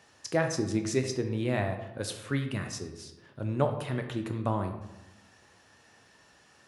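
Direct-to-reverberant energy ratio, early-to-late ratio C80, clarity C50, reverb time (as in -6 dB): 5.0 dB, 10.0 dB, 8.0 dB, 1.0 s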